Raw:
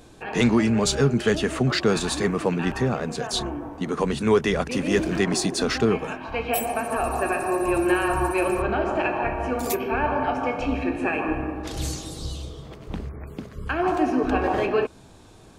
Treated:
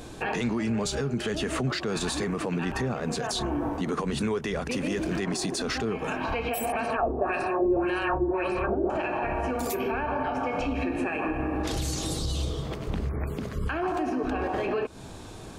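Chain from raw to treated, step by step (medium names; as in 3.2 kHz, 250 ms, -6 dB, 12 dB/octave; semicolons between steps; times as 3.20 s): compression 6:1, threshold -29 dBFS, peak gain reduction 14.5 dB; peak limiter -27.5 dBFS, peak gain reduction 9.5 dB; 6.72–8.90 s: LFO low-pass sine 1.8 Hz 350–5000 Hz; trim +7 dB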